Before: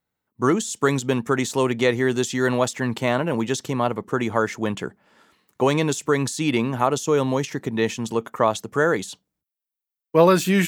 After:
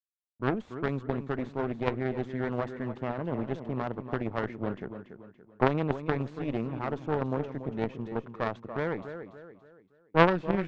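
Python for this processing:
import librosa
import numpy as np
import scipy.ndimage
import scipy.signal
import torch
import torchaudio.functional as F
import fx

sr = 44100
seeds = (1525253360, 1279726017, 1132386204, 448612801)

p1 = fx.cvsd(x, sr, bps=64000)
p2 = fx.rider(p1, sr, range_db=4, speed_s=2.0)
p3 = p1 + (p2 * 10.0 ** (0.0 / 20.0))
p4 = fx.backlash(p3, sr, play_db=-29.5)
p5 = fx.spacing_loss(p4, sr, db_at_10k=44)
p6 = p5 + fx.echo_feedback(p5, sr, ms=285, feedback_pct=40, wet_db=-9.0, dry=0)
p7 = fx.cheby_harmonics(p6, sr, harmonics=(2, 3, 5), levels_db=(-12, -7, -18), full_scale_db=-1.5)
y = p7 * 10.0 ** (-4.5 / 20.0)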